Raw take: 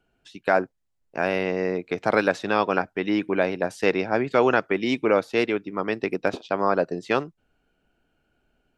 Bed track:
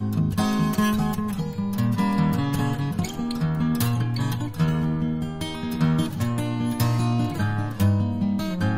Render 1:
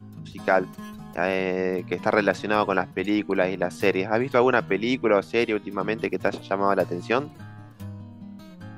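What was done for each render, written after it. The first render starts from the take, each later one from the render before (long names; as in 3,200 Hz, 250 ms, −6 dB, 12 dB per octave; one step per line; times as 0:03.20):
mix in bed track −17.5 dB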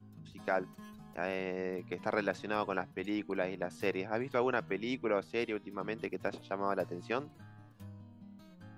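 level −12 dB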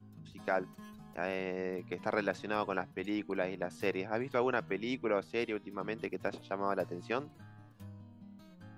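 no processing that can be heard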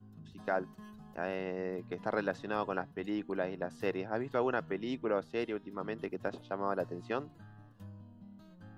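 high-shelf EQ 3,900 Hz −7 dB
notch filter 2,300 Hz, Q 5.7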